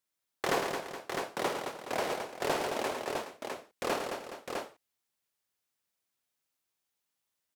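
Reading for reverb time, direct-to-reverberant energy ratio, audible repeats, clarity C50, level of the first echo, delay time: no reverb, no reverb, 6, no reverb, -10.5 dB, 54 ms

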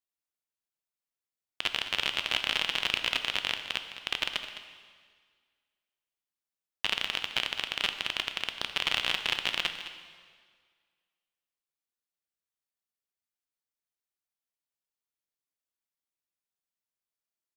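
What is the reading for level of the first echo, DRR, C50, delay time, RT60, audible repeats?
-13.0 dB, 6.5 dB, 7.5 dB, 210 ms, 1.8 s, 1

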